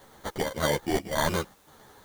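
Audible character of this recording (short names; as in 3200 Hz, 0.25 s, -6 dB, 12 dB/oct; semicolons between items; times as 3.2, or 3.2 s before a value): aliases and images of a low sample rate 2600 Hz, jitter 0%; chopped level 1.8 Hz, depth 60%, duty 75%; a quantiser's noise floor 10-bit, dither triangular; a shimmering, thickened sound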